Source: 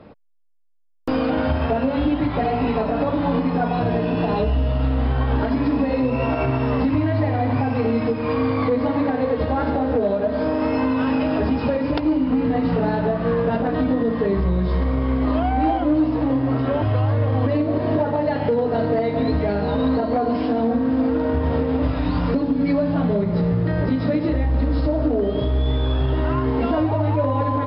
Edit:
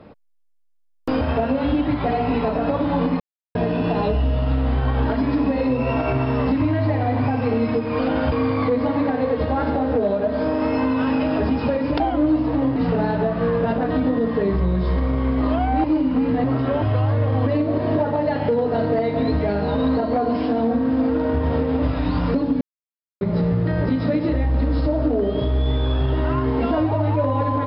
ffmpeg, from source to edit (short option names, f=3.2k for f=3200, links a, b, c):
-filter_complex "[0:a]asplit=12[a][b][c][d][e][f][g][h][i][j][k][l];[a]atrim=end=1.212[m];[b]atrim=start=1.538:end=3.53,asetpts=PTS-STARTPTS,afade=t=out:st=1.988:d=0.004:c=hsin[n];[c]atrim=start=3.53:end=3.88,asetpts=PTS-STARTPTS,volume=0[o];[d]atrim=start=3.88:end=8.322,asetpts=PTS-STARTPTS,afade=t=in:d=0.004:c=hsin[p];[e]atrim=start=1.208:end=1.542[q];[f]atrim=start=8.318:end=12.002[r];[g]atrim=start=15.678:end=16.442[s];[h]atrim=start=12.598:end=15.682[t];[i]atrim=start=11.998:end=12.602[u];[j]atrim=start=16.438:end=22.61,asetpts=PTS-STARTPTS,afade=t=out:st=6.168:d=0.004:c=hsin[v];[k]atrim=start=22.61:end=23.21,asetpts=PTS-STARTPTS,volume=0[w];[l]atrim=start=23.21,asetpts=PTS-STARTPTS,afade=t=in:d=0.004:c=hsin[x];[n][o][p]concat=n=3:v=0:a=1[y];[m][y]acrossfade=d=0.004:c1=hsin:c2=hsin[z];[z][q]acrossfade=d=0.004:c1=hsin:c2=hsin[aa];[aa][r]acrossfade=d=0.004:c1=hsin:c2=hsin[ab];[ab][s]acrossfade=d=0.004:c1=hsin:c2=hsin[ac];[ac][t]acrossfade=d=0.004:c1=hsin:c2=hsin[ad];[ad][u]acrossfade=d=0.004:c1=hsin:c2=hsin[ae];[v][w][x]concat=n=3:v=0:a=1[af];[ae][af]acrossfade=d=0.004:c1=hsin:c2=hsin"